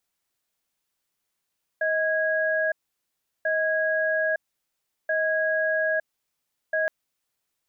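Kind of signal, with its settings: cadence 632 Hz, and 1.65 kHz, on 0.91 s, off 0.73 s, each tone -24 dBFS 5.07 s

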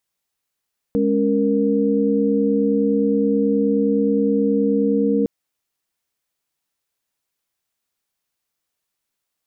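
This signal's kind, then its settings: chord G#3/C#4/A#4 sine, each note -19.5 dBFS 4.31 s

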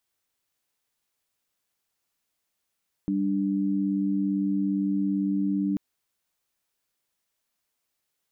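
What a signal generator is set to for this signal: chord G3/D4 sine, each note -25.5 dBFS 2.69 s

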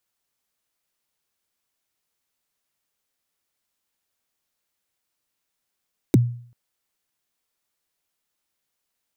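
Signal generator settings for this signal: kick drum length 0.39 s, from 400 Hz, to 120 Hz, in 23 ms, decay 0.52 s, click on, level -8.5 dB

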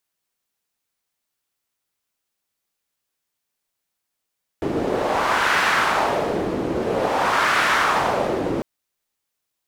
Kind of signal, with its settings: wind-like swept noise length 4.00 s, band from 340 Hz, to 1.5 kHz, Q 1.7, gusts 2, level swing 5 dB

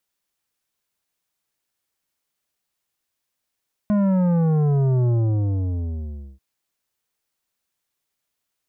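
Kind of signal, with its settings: sub drop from 210 Hz, over 2.49 s, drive 10.5 dB, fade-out 1.31 s, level -17 dB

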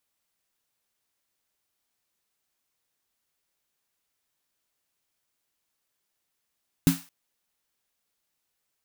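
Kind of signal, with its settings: snare drum length 0.22 s, tones 170 Hz, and 270 Hz, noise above 740 Hz, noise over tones -11.5 dB, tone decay 0.20 s, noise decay 0.38 s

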